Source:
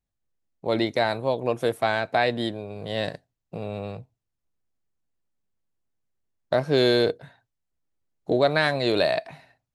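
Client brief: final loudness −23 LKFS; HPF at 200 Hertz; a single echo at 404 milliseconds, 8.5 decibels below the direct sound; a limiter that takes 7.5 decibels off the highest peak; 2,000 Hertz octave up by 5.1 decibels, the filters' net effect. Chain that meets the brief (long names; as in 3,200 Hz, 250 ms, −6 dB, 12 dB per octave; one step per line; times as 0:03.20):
high-pass filter 200 Hz
parametric band 2,000 Hz +6.5 dB
brickwall limiter −11.5 dBFS
single-tap delay 404 ms −8.5 dB
level +2.5 dB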